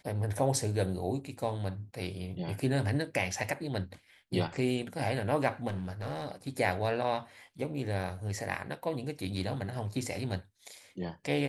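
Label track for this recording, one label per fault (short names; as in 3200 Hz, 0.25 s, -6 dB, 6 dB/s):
5.670000	6.320000	clipped -31.5 dBFS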